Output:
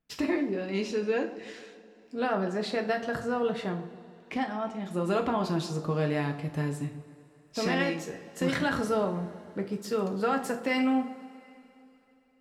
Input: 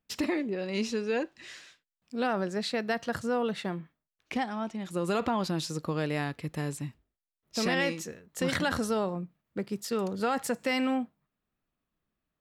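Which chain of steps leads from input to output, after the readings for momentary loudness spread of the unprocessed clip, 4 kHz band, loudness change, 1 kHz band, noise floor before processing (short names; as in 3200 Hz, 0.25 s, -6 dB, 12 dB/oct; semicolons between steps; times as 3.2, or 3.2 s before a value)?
11 LU, -2.5 dB, +1.0 dB, +1.0 dB, under -85 dBFS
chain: high shelf 3400 Hz -7.5 dB; analogue delay 0.137 s, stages 1024, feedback 56%, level -15 dB; two-slope reverb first 0.34 s, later 3.5 s, from -22 dB, DRR 3 dB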